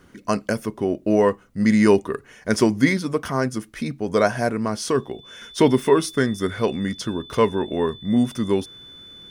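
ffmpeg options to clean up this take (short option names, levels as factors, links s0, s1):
-af "bandreject=f=3500:w=30"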